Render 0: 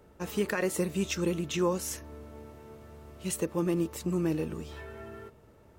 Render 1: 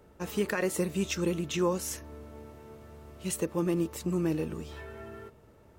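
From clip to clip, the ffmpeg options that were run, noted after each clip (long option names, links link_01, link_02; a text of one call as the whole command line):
ffmpeg -i in.wav -af anull out.wav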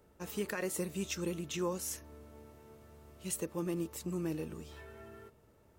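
ffmpeg -i in.wav -af "highshelf=frequency=5500:gain=6.5,volume=-7.5dB" out.wav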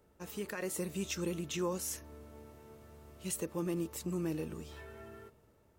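ffmpeg -i in.wav -filter_complex "[0:a]asplit=2[link_01][link_02];[link_02]alimiter=level_in=6dB:limit=-24dB:level=0:latency=1,volume=-6dB,volume=-2.5dB[link_03];[link_01][link_03]amix=inputs=2:normalize=0,dynaudnorm=framelen=190:gausssize=7:maxgain=4dB,volume=-7.5dB" out.wav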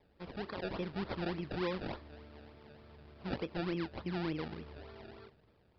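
ffmpeg -i in.wav -af "acrusher=samples=29:mix=1:aa=0.000001:lfo=1:lforange=29:lforate=3.4,aresample=11025,aresample=44100,volume=-1dB" out.wav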